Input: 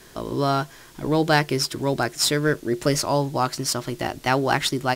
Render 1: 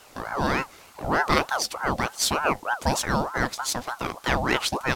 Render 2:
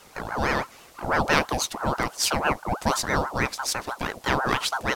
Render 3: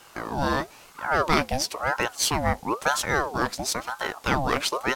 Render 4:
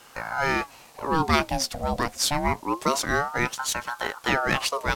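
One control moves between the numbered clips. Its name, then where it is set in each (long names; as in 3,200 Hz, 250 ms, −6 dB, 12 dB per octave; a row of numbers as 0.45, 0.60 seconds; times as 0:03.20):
ring modulator whose carrier an LFO sweeps, at: 3.3, 6.1, 1, 0.26 Hertz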